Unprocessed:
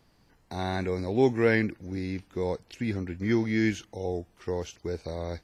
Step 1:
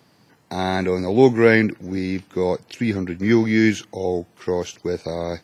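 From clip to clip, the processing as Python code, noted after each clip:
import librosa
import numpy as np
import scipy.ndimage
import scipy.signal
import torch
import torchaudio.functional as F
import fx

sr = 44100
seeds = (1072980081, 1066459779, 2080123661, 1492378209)

y = scipy.signal.sosfilt(scipy.signal.butter(4, 110.0, 'highpass', fs=sr, output='sos'), x)
y = F.gain(torch.from_numpy(y), 9.0).numpy()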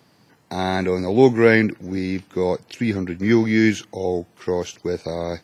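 y = x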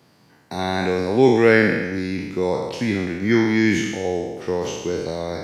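y = fx.spec_trails(x, sr, decay_s=1.26)
y = F.gain(torch.from_numpy(y), -2.0).numpy()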